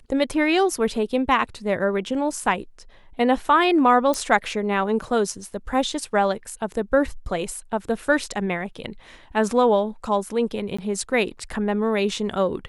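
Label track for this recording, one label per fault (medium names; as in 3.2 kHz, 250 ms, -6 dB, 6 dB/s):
4.140000	4.140000	pop
10.770000	10.790000	dropout 15 ms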